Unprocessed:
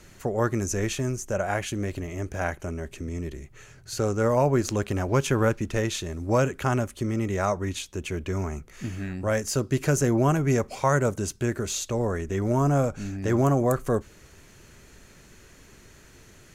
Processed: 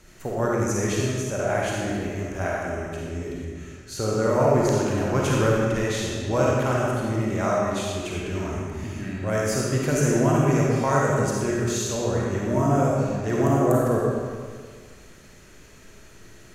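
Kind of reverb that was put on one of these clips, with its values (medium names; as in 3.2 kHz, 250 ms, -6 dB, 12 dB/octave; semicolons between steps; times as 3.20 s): algorithmic reverb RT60 1.8 s, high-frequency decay 0.85×, pre-delay 10 ms, DRR -4.5 dB; trim -3 dB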